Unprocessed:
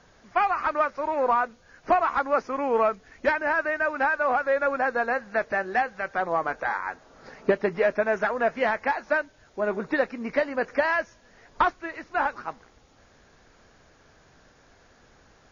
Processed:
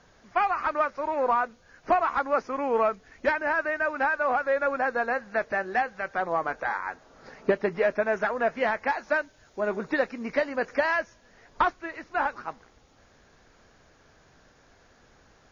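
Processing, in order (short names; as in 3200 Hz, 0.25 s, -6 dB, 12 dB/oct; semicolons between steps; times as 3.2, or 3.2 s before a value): 8.88–10.99 high shelf 5500 Hz +6.5 dB; gain -1.5 dB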